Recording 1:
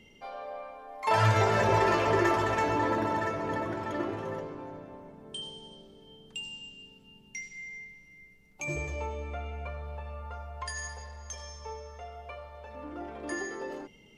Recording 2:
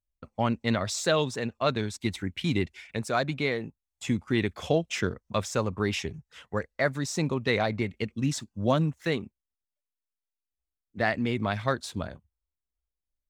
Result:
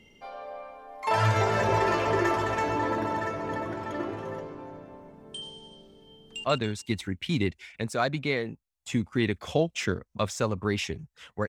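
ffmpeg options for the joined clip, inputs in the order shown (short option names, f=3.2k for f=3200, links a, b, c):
-filter_complex "[0:a]apad=whole_dur=11.48,atrim=end=11.48,atrim=end=6.442[a];[1:a]atrim=start=1.588:end=6.63[b];[a][b]acrossfade=d=0.004:c1=hsin:c2=hsin,asplit=2[c][d];[d]afade=t=in:st=6.17:d=0.01,afade=t=out:st=6.44:d=0.01,aecho=0:1:140|280|420|560|700:0.841395|0.294488|0.103071|0.0360748|0.0126262[e];[c][e]amix=inputs=2:normalize=0"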